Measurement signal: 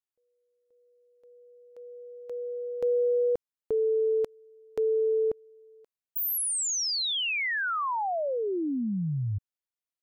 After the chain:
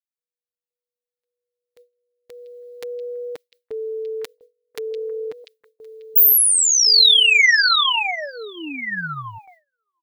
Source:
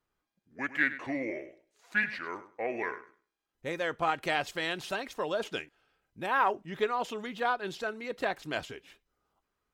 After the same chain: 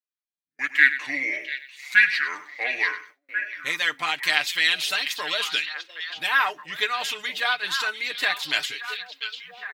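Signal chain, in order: RIAA curve recording; comb 6.7 ms, depth 60%; in parallel at -2.5 dB: vocal rider within 5 dB 0.5 s; on the sum: ten-band EQ 500 Hz -6 dB, 2000 Hz +9 dB, 4000 Hz +9 dB; on a send: delay with a stepping band-pass 0.695 s, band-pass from 3500 Hz, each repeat -1.4 oct, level -6 dB; on the sum: gate with hold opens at -34 dBFS, closes at -39 dBFS, hold 19 ms, range -26 dB; gain -5.5 dB

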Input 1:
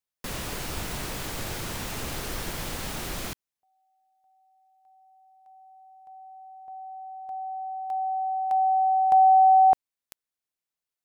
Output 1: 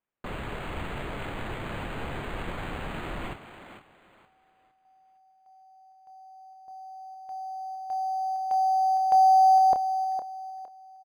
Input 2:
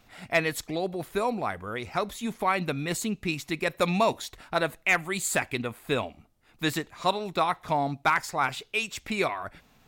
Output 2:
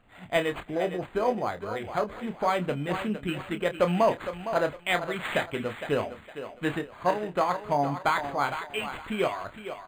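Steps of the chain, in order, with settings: notch 3700 Hz, Q 21; dynamic EQ 550 Hz, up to +5 dB, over -39 dBFS, Q 2.1; doubler 28 ms -8.5 dB; on a send: thinning echo 0.46 s, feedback 30%, high-pass 260 Hz, level -9.5 dB; on the sum: decimation joined by straight lines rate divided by 8×; gain -1.5 dB

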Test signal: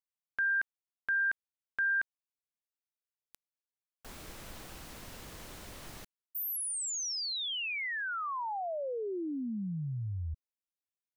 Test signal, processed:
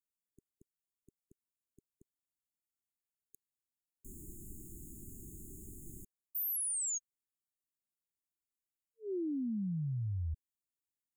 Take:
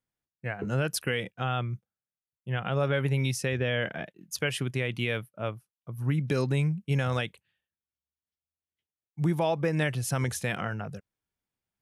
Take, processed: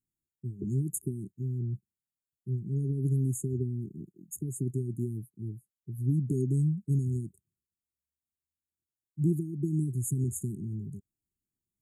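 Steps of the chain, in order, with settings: brick-wall FIR band-stop 410–6500 Hz

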